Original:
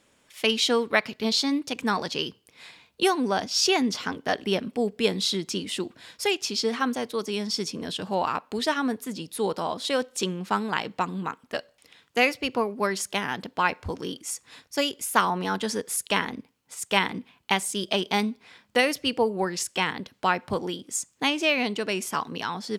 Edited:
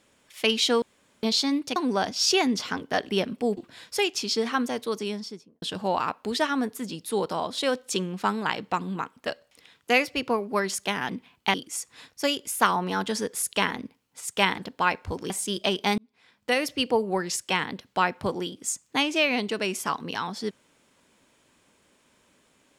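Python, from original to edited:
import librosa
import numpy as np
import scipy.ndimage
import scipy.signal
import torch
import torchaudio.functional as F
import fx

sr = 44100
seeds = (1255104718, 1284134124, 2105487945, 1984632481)

y = fx.studio_fade_out(x, sr, start_s=7.19, length_s=0.7)
y = fx.edit(y, sr, fx.room_tone_fill(start_s=0.82, length_s=0.41),
    fx.cut(start_s=1.76, length_s=1.35),
    fx.cut(start_s=4.92, length_s=0.92),
    fx.swap(start_s=13.36, length_s=0.72, other_s=17.12, other_length_s=0.45),
    fx.fade_in_span(start_s=18.25, length_s=0.77), tone=tone)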